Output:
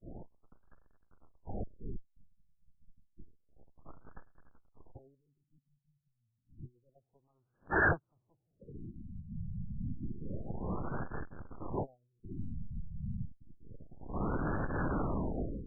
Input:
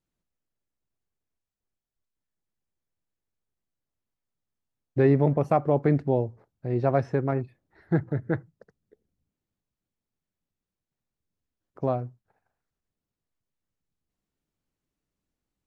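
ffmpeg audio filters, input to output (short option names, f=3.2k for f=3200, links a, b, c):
-af "aeval=exprs='val(0)+0.5*0.0188*sgn(val(0))':c=same,acompressor=threshold=-36dB:ratio=12,aeval=exprs='0.0158*(abs(mod(val(0)/0.0158+3,4)-2)-1)':c=same,highshelf=f=2k:g=11.5,agate=range=-45dB:threshold=-35dB:ratio=16:detection=peak,dynaudnorm=f=350:g=3:m=13dB,afftfilt=real='re*lt(b*sr/1024,210*pow(1800/210,0.5+0.5*sin(2*PI*0.29*pts/sr)))':imag='im*lt(b*sr/1024,210*pow(1800/210,0.5+0.5*sin(2*PI*0.29*pts/sr)))':win_size=1024:overlap=0.75"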